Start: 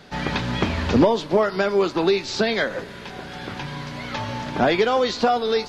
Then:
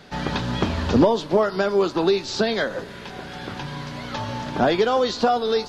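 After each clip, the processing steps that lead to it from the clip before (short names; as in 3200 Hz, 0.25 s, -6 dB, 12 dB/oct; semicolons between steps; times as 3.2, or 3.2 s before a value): dynamic EQ 2200 Hz, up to -7 dB, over -43 dBFS, Q 2.6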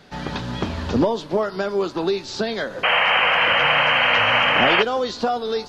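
painted sound noise, 2.83–4.83, 460–3200 Hz -15 dBFS; gain -2.5 dB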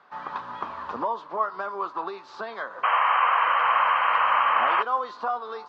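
in parallel at -2.5 dB: limiter -11.5 dBFS, peak gain reduction 7 dB; on the sum: band-pass 1100 Hz, Q 5.2; gain +2 dB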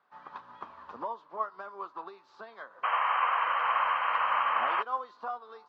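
upward expander 1.5:1, over -38 dBFS; gain -5.5 dB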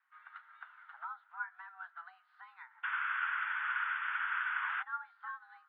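treble ducked by the level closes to 2300 Hz, closed at -28.5 dBFS; mistuned SSB +360 Hz 460–3200 Hz; gain -7.5 dB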